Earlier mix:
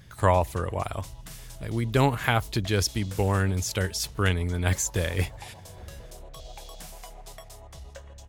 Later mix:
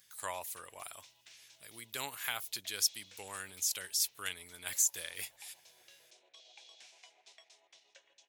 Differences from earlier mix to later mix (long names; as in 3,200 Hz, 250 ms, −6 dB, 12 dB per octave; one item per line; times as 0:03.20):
background: add loudspeaker in its box 300–5,100 Hz, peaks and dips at 350 Hz +8 dB, 1,200 Hz −8 dB, 2,400 Hz +6 dB, 4,800 Hz −5 dB
master: add first difference